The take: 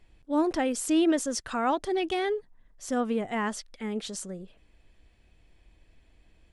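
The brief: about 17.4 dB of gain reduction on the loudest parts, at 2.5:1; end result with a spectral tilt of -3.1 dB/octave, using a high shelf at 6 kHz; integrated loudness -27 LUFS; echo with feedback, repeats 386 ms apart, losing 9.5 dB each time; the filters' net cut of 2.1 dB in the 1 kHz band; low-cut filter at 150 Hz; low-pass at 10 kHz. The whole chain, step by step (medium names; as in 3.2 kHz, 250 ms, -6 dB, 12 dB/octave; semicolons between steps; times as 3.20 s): high-pass 150 Hz; low-pass 10 kHz; peaking EQ 1 kHz -3 dB; treble shelf 6 kHz +3.5 dB; compression 2.5:1, threshold -48 dBFS; feedback delay 386 ms, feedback 33%, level -9.5 dB; trim +17 dB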